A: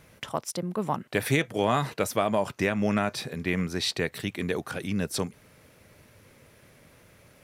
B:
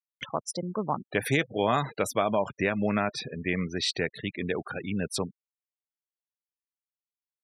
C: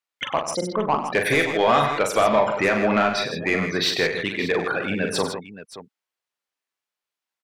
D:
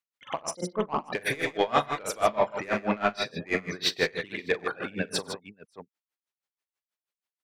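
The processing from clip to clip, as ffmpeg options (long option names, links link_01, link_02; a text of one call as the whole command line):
ffmpeg -i in.wav -af "lowshelf=frequency=220:gain=-3.5,afftfilt=real='re*gte(hypot(re,im),0.02)':imag='im*gte(hypot(re,im),0.02)':win_size=1024:overlap=0.75,acompressor=mode=upward:threshold=-36dB:ratio=2.5" out.wav
ffmpeg -i in.wav -filter_complex "[0:a]asplit=2[link_01][link_02];[link_02]highpass=frequency=720:poles=1,volume=17dB,asoftclip=type=tanh:threshold=-10.5dB[link_03];[link_01][link_03]amix=inputs=2:normalize=0,lowpass=frequency=2600:poles=1,volume=-6dB,asplit=2[link_04][link_05];[link_05]aecho=0:1:42|97|141|159|575:0.473|0.266|0.211|0.316|0.178[link_06];[link_04][link_06]amix=inputs=2:normalize=0,volume=2dB" out.wav
ffmpeg -i in.wav -af "aeval=exprs='val(0)*pow(10,-24*(0.5-0.5*cos(2*PI*6.2*n/s))/20)':channel_layout=same,volume=-1.5dB" out.wav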